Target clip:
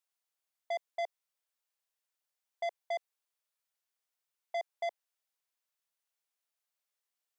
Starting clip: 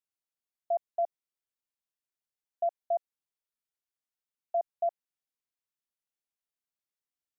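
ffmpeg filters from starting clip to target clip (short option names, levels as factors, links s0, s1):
-af "highpass=f=480:w=0.5412,highpass=f=480:w=1.3066,asoftclip=type=tanh:threshold=0.0158,volume=1.68"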